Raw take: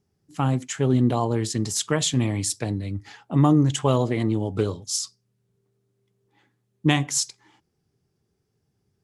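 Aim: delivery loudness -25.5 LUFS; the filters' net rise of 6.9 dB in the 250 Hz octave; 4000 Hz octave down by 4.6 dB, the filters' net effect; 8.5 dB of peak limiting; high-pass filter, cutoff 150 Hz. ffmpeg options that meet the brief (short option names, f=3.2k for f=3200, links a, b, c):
-af "highpass=150,equalizer=f=250:t=o:g=9,equalizer=f=4k:t=o:g=-6.5,volume=-2dB,alimiter=limit=-15dB:level=0:latency=1"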